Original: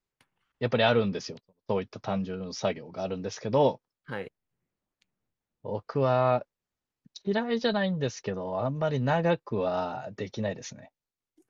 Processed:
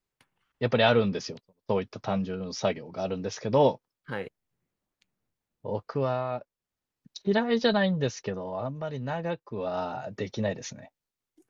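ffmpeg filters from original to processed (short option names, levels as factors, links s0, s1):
-af "volume=12.6,afade=t=out:st=5.78:d=0.5:silence=0.298538,afade=t=in:st=6.28:d=0.91:silence=0.251189,afade=t=out:st=7.82:d=1.04:silence=0.334965,afade=t=in:st=9.5:d=0.6:silence=0.375837"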